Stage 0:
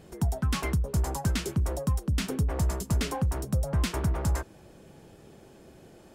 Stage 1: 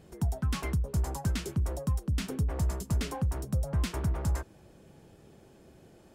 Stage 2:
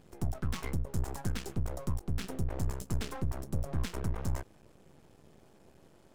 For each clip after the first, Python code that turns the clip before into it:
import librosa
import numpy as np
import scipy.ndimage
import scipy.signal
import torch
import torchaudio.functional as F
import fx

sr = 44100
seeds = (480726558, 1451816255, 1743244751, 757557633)

y1 = fx.peak_eq(x, sr, hz=81.0, db=3.0, octaves=2.7)
y1 = y1 * 10.0 ** (-5.0 / 20.0)
y2 = np.maximum(y1, 0.0)